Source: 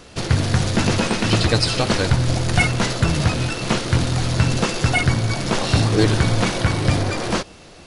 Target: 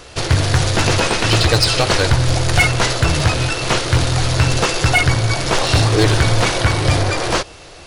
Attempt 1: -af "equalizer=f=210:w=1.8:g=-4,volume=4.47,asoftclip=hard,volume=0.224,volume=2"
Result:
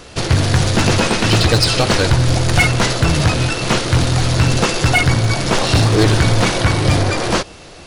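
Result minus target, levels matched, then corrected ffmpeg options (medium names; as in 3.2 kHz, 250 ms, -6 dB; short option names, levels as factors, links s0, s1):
250 Hz band +3.0 dB
-af "equalizer=f=210:w=1.8:g=-13,volume=4.47,asoftclip=hard,volume=0.224,volume=2"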